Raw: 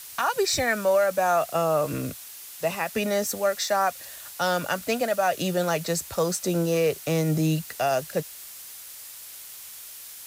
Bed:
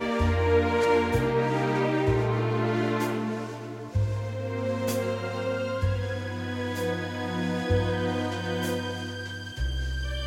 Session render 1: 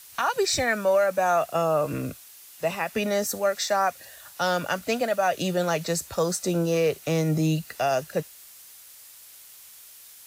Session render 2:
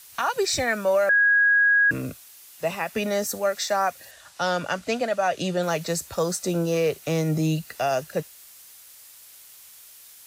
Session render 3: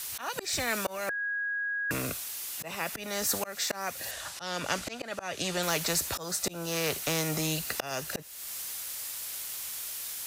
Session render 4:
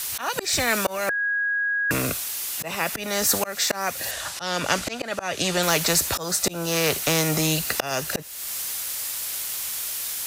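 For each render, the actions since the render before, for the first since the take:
noise print and reduce 6 dB
1.09–1.91 bleep 1650 Hz -15 dBFS; 4.11–5.63 LPF 8200 Hz
auto swell 0.378 s; spectral compressor 2:1
gain +8 dB

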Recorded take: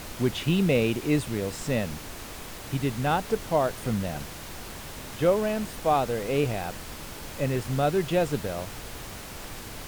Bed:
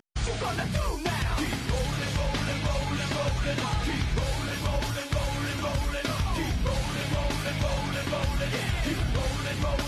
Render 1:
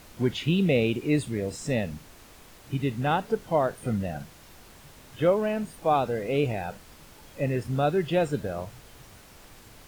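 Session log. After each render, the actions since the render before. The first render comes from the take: noise print and reduce 11 dB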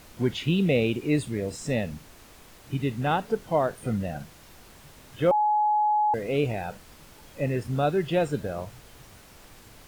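5.31–6.14 bleep 844 Hz -19.5 dBFS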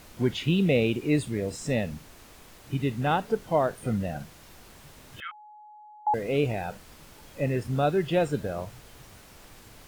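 5.2–6.07 elliptic band-pass 1300–3200 Hz, stop band 50 dB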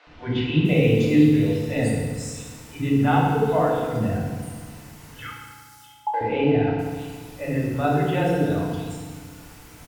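three bands offset in time mids, lows, highs 70/650 ms, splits 480/4000 Hz; FDN reverb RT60 1.6 s, low-frequency decay 1.25×, high-frequency decay 0.85×, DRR -4 dB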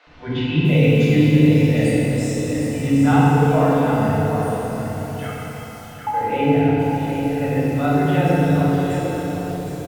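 echo 0.759 s -7 dB; plate-style reverb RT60 4.5 s, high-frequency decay 0.75×, DRR -0.5 dB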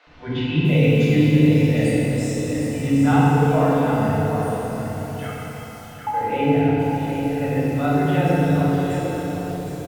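gain -1.5 dB

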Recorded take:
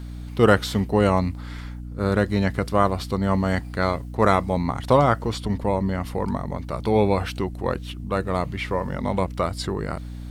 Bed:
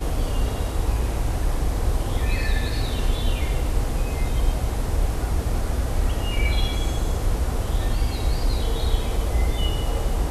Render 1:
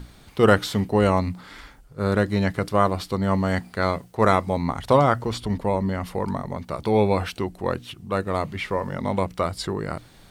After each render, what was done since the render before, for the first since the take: notches 60/120/180/240/300 Hz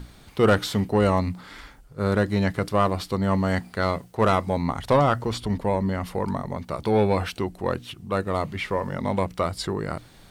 soft clip -9.5 dBFS, distortion -17 dB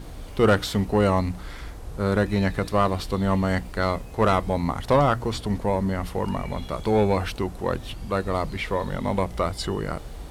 add bed -15 dB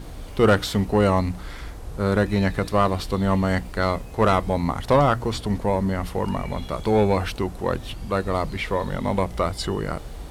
gain +1.5 dB

